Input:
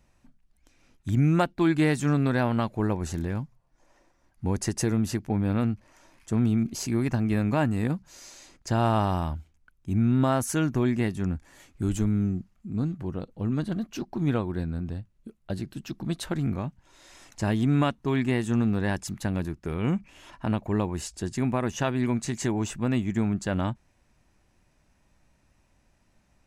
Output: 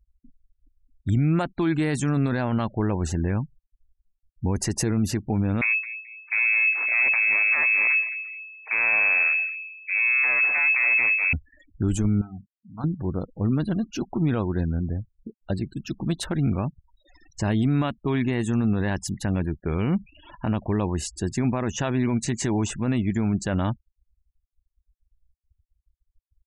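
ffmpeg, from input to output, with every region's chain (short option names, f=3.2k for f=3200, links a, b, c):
-filter_complex "[0:a]asettb=1/sr,asplit=3[a][b][c];[a]atrim=end=5.614[d];[b]atrim=start=5.61:end=11.33,asetpts=PTS-STARTPTS,afade=t=in:d=0.004:c=qsin,afade=t=out:st=5.716:d=0.004:c=qsin,aeval=exprs='abs(val(0))':c=same,aecho=1:1:216|432|648:0.2|0.0678|0.0231,atrim=end_sample=252252,lowpass=f=2.2k:t=q:w=0.5098,lowpass=f=2.2k:t=q:w=0.6013,lowpass=f=2.2k:t=q:w=0.9,lowpass=f=2.2k:t=q:w=2.563,afreqshift=-2600[e];[c]atrim=start=11.326[f];[d][e]acrossfade=d=0.004:c1=hsin:c2=qsin[g];[g][f]acrossfade=d=0.004:c1=qsin:c2=hsin,asettb=1/sr,asplit=3[h][i][j];[h]atrim=end=12.214[k];[i]atrim=start=12.21:end=12.84,asetpts=PTS-STARTPTS,afade=t=in:d=0.004:c=qsin,afade=t=out:st=0.626:d=0.004:c=qsin,lowshelf=f=580:t=q:w=3:g=-12.5,bandreject=f=50:t=h:w=6,bandreject=f=100:t=h:w=6,bandreject=f=150:t=h:w=6,bandreject=f=200:t=h:w=6,bandreject=f=250:t=h:w=6[l];[j]atrim=start=12.836[m];[k][l]acrossfade=d=0.004:c1=hsin:c2=qsin[n];[n][m]acrossfade=d=0.004:c1=qsin:c2=hsin,afftfilt=real='re*gte(hypot(re,im),0.00708)':imag='im*gte(hypot(re,im),0.00708)':win_size=1024:overlap=0.75,equalizer=f=70:w=1.7:g=2.5,alimiter=limit=-18.5dB:level=0:latency=1:release=17,volume=4.5dB"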